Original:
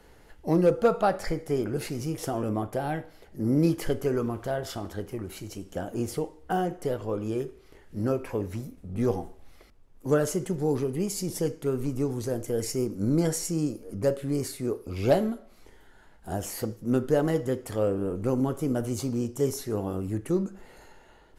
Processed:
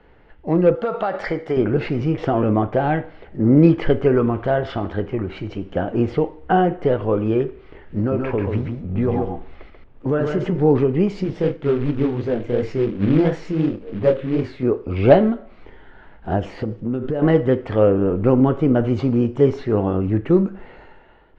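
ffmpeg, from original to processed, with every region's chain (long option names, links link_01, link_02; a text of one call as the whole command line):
ffmpeg -i in.wav -filter_complex "[0:a]asettb=1/sr,asplit=3[link_01][link_02][link_03];[link_01]atrim=end=0.754[link_04];[link_02]atrim=start=0.75:end=1.57,asetpts=PTS-STARTPTS,afade=type=in:duration=0.004:curve=qsin,afade=type=out:start_time=0.816:duration=0.004:curve=qsin,aemphasis=mode=production:type=bsi,bandreject=frequency=2500:width=12,acompressor=threshold=-26dB:ratio=12:attack=3.2:release=140:knee=1:detection=peak[link_05];[link_03]atrim=start=1.566[link_06];[link_04][link_05]acrossfade=duration=0.004:curve1=hsin:curve2=qsin[link_07];[link_07][link_06]acrossfade=duration=0.004:curve1=qsin:curve2=hsin,asettb=1/sr,asplit=3[link_08][link_09][link_10];[link_08]atrim=end=7.984[link_11];[link_09]atrim=start=7.98:end=10.6,asetpts=PTS-STARTPTS,afade=type=in:duration=0.004:curve=qsin,afade=type=out:start_time=2.616:duration=0.004:curve=qsin,acompressor=threshold=-27dB:ratio=5:attack=3.2:release=140:knee=1:detection=peak,aecho=1:1:137:0.596,atrim=end_sample=115542[link_12];[link_10]atrim=start=10.596[link_13];[link_11][link_12]acrossfade=duration=0.004:curve1=hsin:curve2=qsin[link_14];[link_14][link_13]acrossfade=duration=0.004:curve1=qsin:curve2=hsin,asettb=1/sr,asplit=3[link_15][link_16][link_17];[link_15]atrim=end=11.244[link_18];[link_16]atrim=start=11.24:end=14.63,asetpts=PTS-STARTPTS,afade=type=in:duration=0.004:curve=qsin,afade=type=out:start_time=3.386:duration=0.004:curve=qsin,flanger=delay=19.5:depth=7.1:speed=2.8,acrusher=bits=4:mode=log:mix=0:aa=0.000001[link_19];[link_17]atrim=start=14.626[link_20];[link_18][link_19]acrossfade=duration=0.004:curve1=hsin:curve2=qsin[link_21];[link_21][link_20]acrossfade=duration=0.004:curve1=qsin:curve2=hsin,asettb=1/sr,asplit=3[link_22][link_23][link_24];[link_22]atrim=end=16.394[link_25];[link_23]atrim=start=16.39:end=17.22,asetpts=PTS-STARTPTS,afade=type=in:duration=0.004:curve=qsin,afade=type=out:start_time=0.826:duration=0.004:curve=qsin,equalizer=frequency=1400:width=0.68:gain=-4.5,acompressor=threshold=-29dB:ratio=12:attack=3.2:release=140:knee=1:detection=peak[link_26];[link_24]atrim=start=17.216[link_27];[link_25][link_26]acrossfade=duration=0.004:curve1=hsin:curve2=qsin[link_28];[link_28][link_27]acrossfade=duration=0.004:curve1=qsin:curve2=hsin,dynaudnorm=framelen=120:gausssize=13:maxgain=8dB,lowpass=frequency=3000:width=0.5412,lowpass=frequency=3000:width=1.3066,volume=3dB" out.wav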